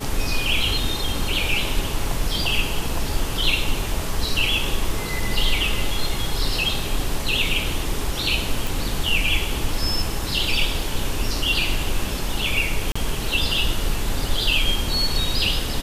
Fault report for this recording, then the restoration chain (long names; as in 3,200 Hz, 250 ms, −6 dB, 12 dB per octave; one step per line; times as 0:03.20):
0:08.67: click
0:12.92–0:12.96: drop-out 35 ms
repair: click removal
repair the gap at 0:12.92, 35 ms